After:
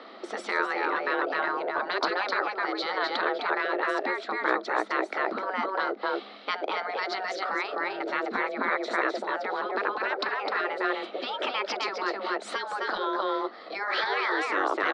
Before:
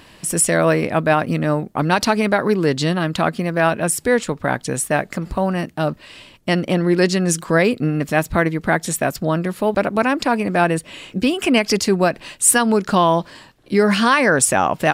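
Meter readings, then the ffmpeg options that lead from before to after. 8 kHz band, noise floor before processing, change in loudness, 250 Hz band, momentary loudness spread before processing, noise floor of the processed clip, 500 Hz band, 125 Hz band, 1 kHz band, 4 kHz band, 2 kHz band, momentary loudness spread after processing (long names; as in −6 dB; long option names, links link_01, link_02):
below −30 dB, −48 dBFS, −10.5 dB, −18.0 dB, 7 LU, −45 dBFS, −12.0 dB, below −35 dB, −7.0 dB, −8.0 dB, −6.0 dB, 5 LU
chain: -filter_complex "[0:a]afreqshift=190,highpass=190,equalizer=frequency=650:width_type=q:width=4:gain=9,equalizer=frequency=1300:width_type=q:width=4:gain=8,equalizer=frequency=2800:width_type=q:width=4:gain=-9,equalizer=frequency=4000:width_type=q:width=4:gain=7,lowpass=frequency=4300:width=0.5412,lowpass=frequency=4300:width=1.3066,asplit=2[link_01][link_02];[link_02]aecho=0:1:257:0.562[link_03];[link_01][link_03]amix=inputs=2:normalize=0,acompressor=threshold=-13dB:ratio=5,afftfilt=real='re*lt(hypot(re,im),0.398)':imag='im*lt(hypot(re,im),0.398)':win_size=1024:overlap=0.75,aemphasis=mode=reproduction:type=cd,volume=-1.5dB"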